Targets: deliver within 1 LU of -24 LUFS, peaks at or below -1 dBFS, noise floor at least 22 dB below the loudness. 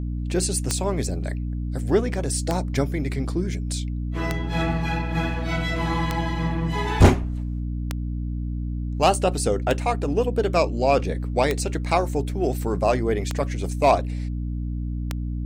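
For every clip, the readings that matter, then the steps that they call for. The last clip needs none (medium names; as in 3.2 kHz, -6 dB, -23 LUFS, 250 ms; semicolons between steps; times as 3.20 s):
clicks found 9; hum 60 Hz; highest harmonic 300 Hz; hum level -25 dBFS; loudness -24.5 LUFS; peak level -4.0 dBFS; loudness target -24.0 LUFS
-> de-click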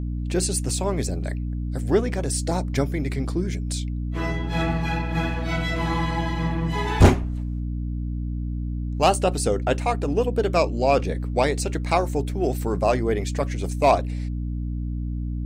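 clicks found 0; hum 60 Hz; highest harmonic 300 Hz; hum level -25 dBFS
-> hum notches 60/120/180/240/300 Hz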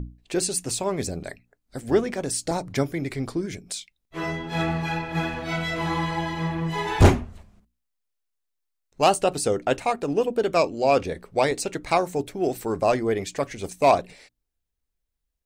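hum not found; loudness -25.0 LUFS; peak level -4.0 dBFS; loudness target -24.0 LUFS
-> trim +1 dB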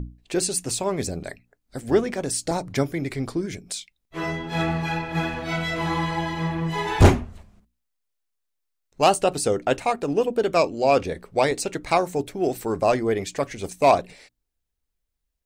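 loudness -24.0 LUFS; peak level -3.0 dBFS; noise floor -78 dBFS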